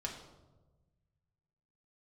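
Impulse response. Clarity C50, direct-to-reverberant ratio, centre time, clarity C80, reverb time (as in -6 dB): 6.5 dB, -1.5 dB, 31 ms, 8.5 dB, 1.2 s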